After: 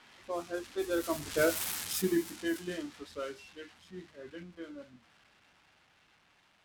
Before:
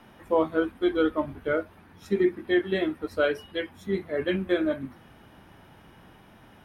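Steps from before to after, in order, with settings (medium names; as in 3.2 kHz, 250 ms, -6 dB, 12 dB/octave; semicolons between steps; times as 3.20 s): zero-crossing glitches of -20.5 dBFS; Doppler pass-by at 1.58 s, 25 m/s, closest 6.8 m; level-controlled noise filter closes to 2.3 kHz, open at -28.5 dBFS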